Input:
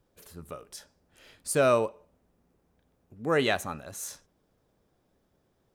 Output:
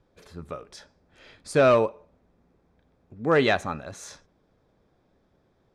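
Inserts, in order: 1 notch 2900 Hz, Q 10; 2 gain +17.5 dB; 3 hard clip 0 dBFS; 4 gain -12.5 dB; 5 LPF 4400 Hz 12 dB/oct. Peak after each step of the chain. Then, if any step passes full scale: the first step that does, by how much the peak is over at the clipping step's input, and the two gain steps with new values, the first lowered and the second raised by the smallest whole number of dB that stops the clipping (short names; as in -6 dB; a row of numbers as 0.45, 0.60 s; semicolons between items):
-12.0, +5.5, 0.0, -12.5, -12.0 dBFS; step 2, 5.5 dB; step 2 +11.5 dB, step 4 -6.5 dB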